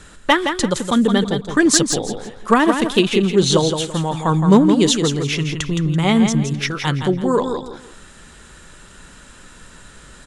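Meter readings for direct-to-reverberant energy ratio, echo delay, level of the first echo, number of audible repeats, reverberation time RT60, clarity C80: none, 0.167 s, -7.0 dB, 3, none, none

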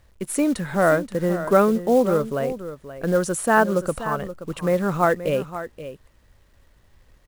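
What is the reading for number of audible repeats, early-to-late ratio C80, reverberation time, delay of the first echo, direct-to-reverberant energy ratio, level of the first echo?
1, none, none, 0.527 s, none, -12.5 dB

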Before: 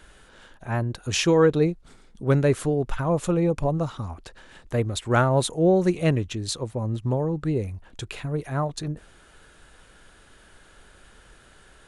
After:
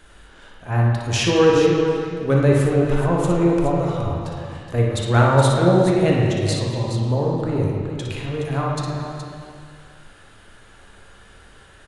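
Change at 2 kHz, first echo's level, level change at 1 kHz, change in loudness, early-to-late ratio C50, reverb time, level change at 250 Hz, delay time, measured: +5.0 dB, -6.0 dB, +6.0 dB, +5.0 dB, -1.5 dB, 2.1 s, +5.0 dB, 59 ms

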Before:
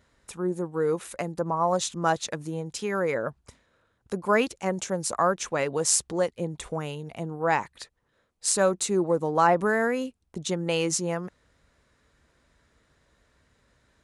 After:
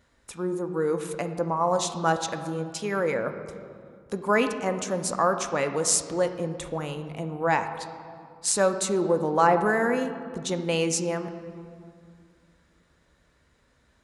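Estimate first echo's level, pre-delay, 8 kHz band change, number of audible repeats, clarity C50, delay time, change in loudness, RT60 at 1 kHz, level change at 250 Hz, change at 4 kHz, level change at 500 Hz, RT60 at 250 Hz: none, 3 ms, 0.0 dB, none, 9.5 dB, none, +0.5 dB, 2.1 s, +1.0 dB, +0.5 dB, +1.0 dB, 2.8 s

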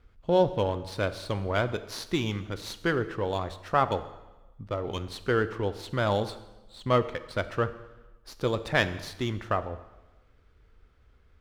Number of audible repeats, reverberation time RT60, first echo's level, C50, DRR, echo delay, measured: none, 1.1 s, none, 14.0 dB, 11.5 dB, none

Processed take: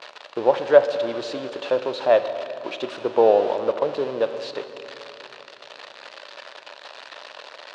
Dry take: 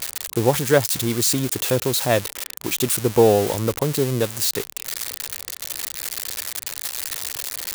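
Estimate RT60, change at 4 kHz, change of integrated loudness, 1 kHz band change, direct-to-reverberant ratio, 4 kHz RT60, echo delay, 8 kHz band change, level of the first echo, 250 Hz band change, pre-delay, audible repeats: 3.0 s, -9.0 dB, -0.5 dB, +1.5 dB, 9.0 dB, 2.3 s, none, under -25 dB, none, -8.5 dB, 8 ms, none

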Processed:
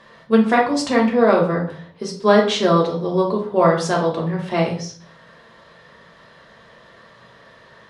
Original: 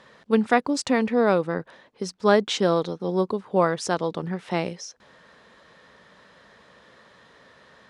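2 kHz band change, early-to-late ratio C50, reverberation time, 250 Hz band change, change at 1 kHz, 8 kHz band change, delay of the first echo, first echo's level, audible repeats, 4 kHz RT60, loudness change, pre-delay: +4.5 dB, 8.0 dB, 0.55 s, +6.0 dB, +6.0 dB, +2.0 dB, none, none, none, 0.40 s, +5.5 dB, 3 ms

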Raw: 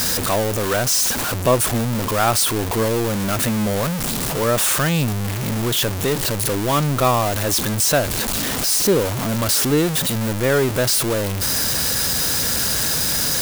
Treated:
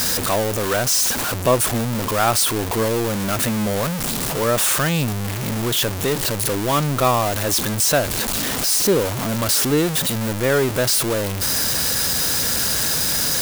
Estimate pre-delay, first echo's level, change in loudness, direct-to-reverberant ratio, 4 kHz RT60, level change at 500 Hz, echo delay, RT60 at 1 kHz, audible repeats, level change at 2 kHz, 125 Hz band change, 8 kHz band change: none, none, -0.5 dB, none, none, -0.5 dB, none, none, none, 0.0 dB, -2.0 dB, 0.0 dB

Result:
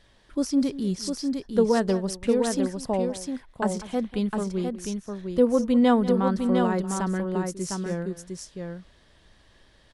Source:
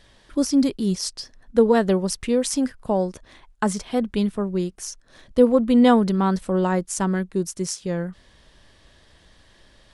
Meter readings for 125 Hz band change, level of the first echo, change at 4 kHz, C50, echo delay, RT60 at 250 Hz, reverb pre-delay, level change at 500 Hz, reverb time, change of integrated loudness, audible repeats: -3.5 dB, -16.0 dB, -5.0 dB, none, 0.192 s, none, none, -3.0 dB, none, -3.5 dB, 2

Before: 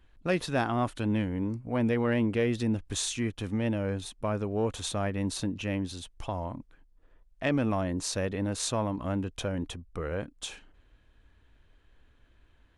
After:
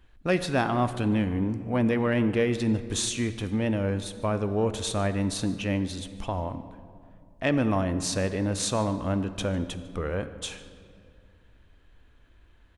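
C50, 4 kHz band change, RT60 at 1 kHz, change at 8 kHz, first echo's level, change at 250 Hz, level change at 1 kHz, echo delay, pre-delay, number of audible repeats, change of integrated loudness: 12.0 dB, +3.0 dB, 2.1 s, +3.0 dB, -21.5 dB, +3.5 dB, +3.5 dB, 0.149 s, 6 ms, 1, +3.5 dB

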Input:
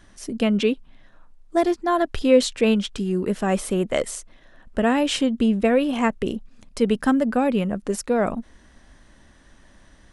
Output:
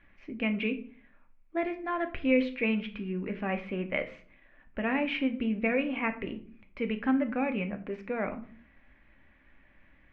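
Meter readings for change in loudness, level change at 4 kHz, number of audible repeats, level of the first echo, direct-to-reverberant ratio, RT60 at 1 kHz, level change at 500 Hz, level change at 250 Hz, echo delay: -9.0 dB, -13.0 dB, none, none, 6.5 dB, 0.50 s, -11.5 dB, -9.0 dB, none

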